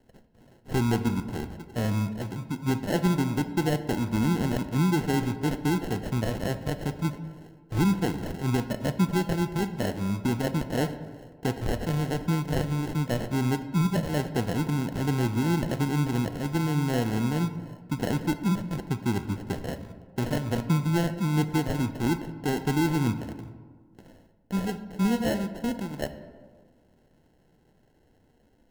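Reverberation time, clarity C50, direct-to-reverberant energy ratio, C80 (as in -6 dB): 1.6 s, 11.5 dB, 9.0 dB, 13.0 dB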